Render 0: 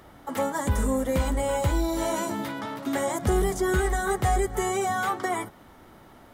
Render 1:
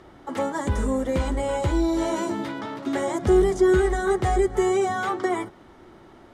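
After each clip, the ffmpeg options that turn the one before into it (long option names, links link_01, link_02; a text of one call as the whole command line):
ffmpeg -i in.wav -af "lowpass=6800,equalizer=frequency=360:width_type=o:width=0.36:gain=9" out.wav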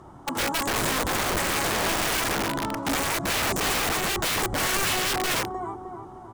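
ffmpeg -i in.wav -filter_complex "[0:a]equalizer=frequency=125:width_type=o:width=1:gain=8,equalizer=frequency=500:width_type=o:width=1:gain=-4,equalizer=frequency=1000:width_type=o:width=1:gain=10,equalizer=frequency=2000:width_type=o:width=1:gain=-10,equalizer=frequency=4000:width_type=o:width=1:gain=-8,equalizer=frequency=8000:width_type=o:width=1:gain=6,asplit=2[link_01][link_02];[link_02]adelay=306,lowpass=frequency=1800:poles=1,volume=-9.5dB,asplit=2[link_03][link_04];[link_04]adelay=306,lowpass=frequency=1800:poles=1,volume=0.51,asplit=2[link_05][link_06];[link_06]adelay=306,lowpass=frequency=1800:poles=1,volume=0.51,asplit=2[link_07][link_08];[link_08]adelay=306,lowpass=frequency=1800:poles=1,volume=0.51,asplit=2[link_09][link_10];[link_10]adelay=306,lowpass=frequency=1800:poles=1,volume=0.51,asplit=2[link_11][link_12];[link_12]adelay=306,lowpass=frequency=1800:poles=1,volume=0.51[link_13];[link_01][link_03][link_05][link_07][link_09][link_11][link_13]amix=inputs=7:normalize=0,aeval=exprs='(mod(10.6*val(0)+1,2)-1)/10.6':channel_layout=same" out.wav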